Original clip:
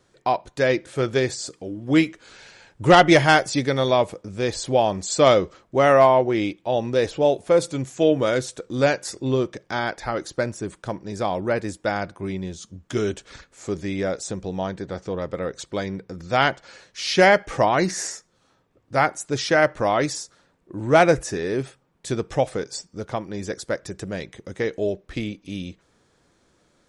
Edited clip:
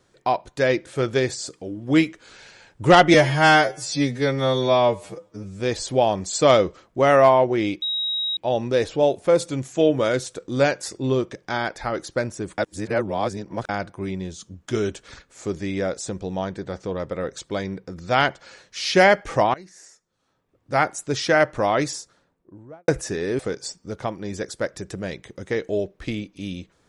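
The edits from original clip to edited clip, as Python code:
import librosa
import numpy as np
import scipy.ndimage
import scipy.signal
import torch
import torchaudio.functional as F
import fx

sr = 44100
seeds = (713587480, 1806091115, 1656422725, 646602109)

y = fx.studio_fade_out(x, sr, start_s=20.08, length_s=1.02)
y = fx.edit(y, sr, fx.stretch_span(start_s=3.14, length_s=1.23, factor=2.0),
    fx.insert_tone(at_s=6.59, length_s=0.55, hz=3810.0, db=-22.0),
    fx.reverse_span(start_s=10.8, length_s=1.11),
    fx.fade_in_from(start_s=17.76, length_s=1.3, curve='qua', floor_db=-22.0),
    fx.cut(start_s=21.61, length_s=0.87), tone=tone)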